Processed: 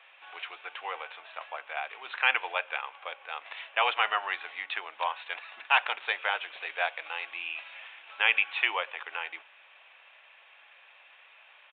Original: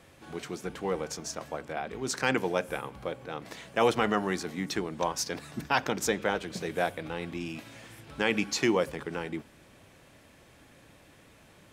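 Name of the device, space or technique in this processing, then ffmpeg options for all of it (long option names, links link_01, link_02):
musical greeting card: -af "aresample=8000,aresample=44100,highpass=frequency=770:width=0.5412,highpass=frequency=770:width=1.3066,equalizer=frequency=2600:width_type=o:width=0.42:gain=8,volume=2.5dB"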